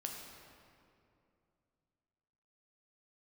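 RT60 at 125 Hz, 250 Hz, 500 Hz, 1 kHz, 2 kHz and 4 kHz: 3.3 s, 3.0 s, 2.7 s, 2.4 s, 2.0 s, 1.6 s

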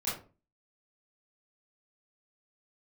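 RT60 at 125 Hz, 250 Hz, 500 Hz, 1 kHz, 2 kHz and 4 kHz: 0.45 s, 0.45 s, 0.40 s, 0.35 s, 0.25 s, 0.20 s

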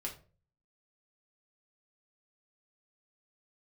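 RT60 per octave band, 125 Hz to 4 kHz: 0.65 s, 0.50 s, 0.45 s, 0.35 s, 0.30 s, 0.25 s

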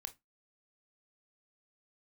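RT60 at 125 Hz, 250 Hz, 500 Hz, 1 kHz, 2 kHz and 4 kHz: 0.25 s, 0.25 s, 0.15 s, 0.20 s, 0.15 s, 0.15 s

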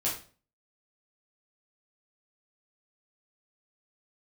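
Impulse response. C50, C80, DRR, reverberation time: 6.5 dB, 11.5 dB, -7.0 dB, 0.40 s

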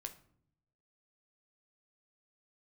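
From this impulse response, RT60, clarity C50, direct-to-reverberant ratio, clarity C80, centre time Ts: 0.65 s, 14.0 dB, 6.0 dB, 18.0 dB, 7 ms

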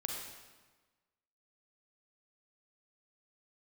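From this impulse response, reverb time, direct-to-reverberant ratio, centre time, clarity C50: 1.3 s, 0.0 dB, 66 ms, 1.0 dB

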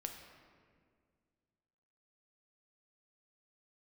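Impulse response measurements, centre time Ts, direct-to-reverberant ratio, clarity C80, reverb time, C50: 42 ms, 3.5 dB, 7.0 dB, 2.0 s, 5.5 dB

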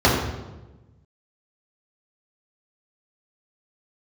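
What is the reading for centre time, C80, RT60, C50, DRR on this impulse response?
57 ms, 4.5 dB, 1.1 s, 2.0 dB, -7.0 dB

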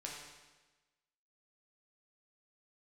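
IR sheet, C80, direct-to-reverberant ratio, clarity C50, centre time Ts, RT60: 3.5 dB, -3.0 dB, 1.5 dB, 64 ms, 1.2 s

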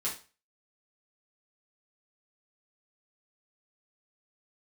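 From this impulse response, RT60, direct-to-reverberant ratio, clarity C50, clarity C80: 0.35 s, -7.0 dB, 8.0 dB, 14.5 dB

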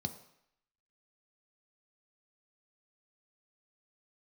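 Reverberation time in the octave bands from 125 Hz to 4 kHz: 0.60 s, 0.60 s, 0.70 s, 0.75 s, 0.80 s, 0.75 s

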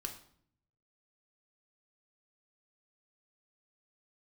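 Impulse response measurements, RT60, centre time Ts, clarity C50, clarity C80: 0.60 s, 15 ms, 9.5 dB, 13.5 dB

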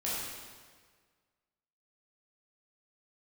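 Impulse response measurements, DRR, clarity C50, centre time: -8.5 dB, -2.5 dB, 112 ms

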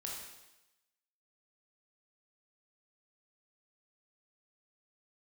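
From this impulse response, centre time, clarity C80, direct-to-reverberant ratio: 61 ms, 4.0 dB, -3.0 dB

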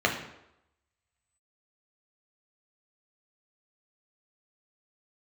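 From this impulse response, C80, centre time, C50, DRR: 10.0 dB, 25 ms, 7.5 dB, 0.0 dB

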